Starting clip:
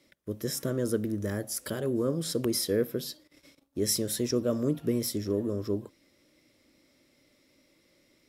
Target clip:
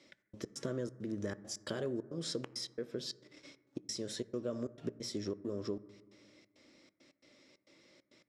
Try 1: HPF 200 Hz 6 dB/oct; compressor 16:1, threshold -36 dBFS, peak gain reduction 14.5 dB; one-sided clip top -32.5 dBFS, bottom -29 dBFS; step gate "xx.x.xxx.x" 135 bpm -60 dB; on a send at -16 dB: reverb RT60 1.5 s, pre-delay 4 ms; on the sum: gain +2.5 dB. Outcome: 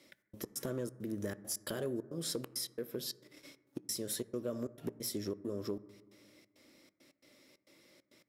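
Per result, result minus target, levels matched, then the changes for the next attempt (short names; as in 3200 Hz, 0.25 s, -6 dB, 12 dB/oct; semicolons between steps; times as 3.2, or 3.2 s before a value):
8000 Hz band +4.5 dB; one-sided clip: distortion +7 dB
add after compressor: LPF 7100 Hz 24 dB/oct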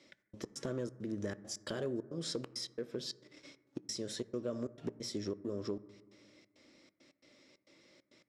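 one-sided clip: distortion +7 dB
change: one-sided clip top -25.5 dBFS, bottom -29 dBFS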